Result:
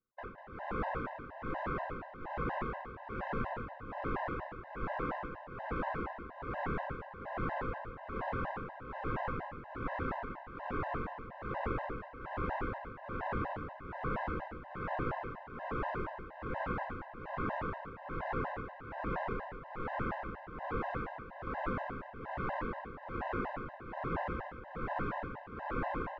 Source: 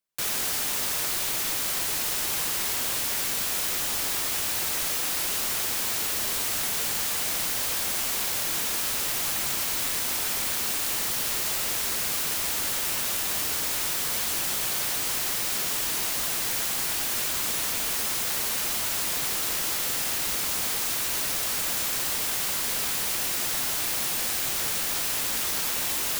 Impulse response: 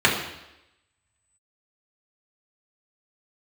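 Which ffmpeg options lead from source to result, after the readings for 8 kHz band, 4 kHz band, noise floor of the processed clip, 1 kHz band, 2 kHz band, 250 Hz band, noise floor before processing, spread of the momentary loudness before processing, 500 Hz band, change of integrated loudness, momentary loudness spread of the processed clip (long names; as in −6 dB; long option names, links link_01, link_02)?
below −40 dB, −32.5 dB, −50 dBFS, −1.0 dB, −10.0 dB, +0.5 dB, −28 dBFS, 0 LU, 0.0 dB, −15.0 dB, 7 LU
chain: -af "lowshelf=frequency=70:gain=7.5,tremolo=f=1.2:d=0.93,lowpass=frequency=1400:width=0.5412,lowpass=frequency=1400:width=1.3066,aecho=1:1:195|390|585|780:0.398|0.147|0.0545|0.0202,afftfilt=real='re*gt(sin(2*PI*4.2*pts/sr)*(1-2*mod(floor(b*sr/1024/520),2)),0)':imag='im*gt(sin(2*PI*4.2*pts/sr)*(1-2*mod(floor(b*sr/1024/520),2)),0)':win_size=1024:overlap=0.75,volume=6.5dB"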